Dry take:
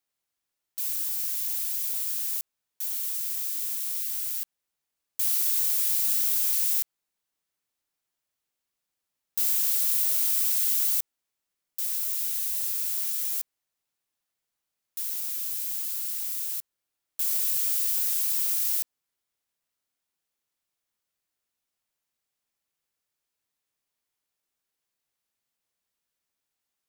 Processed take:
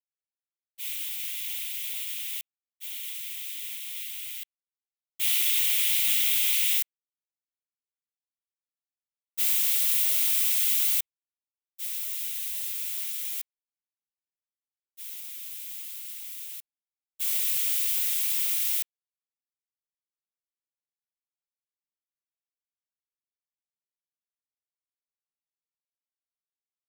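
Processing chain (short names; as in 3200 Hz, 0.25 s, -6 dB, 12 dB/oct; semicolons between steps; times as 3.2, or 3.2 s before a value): sample leveller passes 1; expander -19 dBFS; band shelf 2700 Hz +15 dB 1.1 oct, from 6.77 s +8.5 dB; gain -1.5 dB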